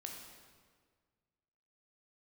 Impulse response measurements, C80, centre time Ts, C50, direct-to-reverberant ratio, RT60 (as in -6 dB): 4.5 dB, 60 ms, 3.0 dB, 0.5 dB, 1.7 s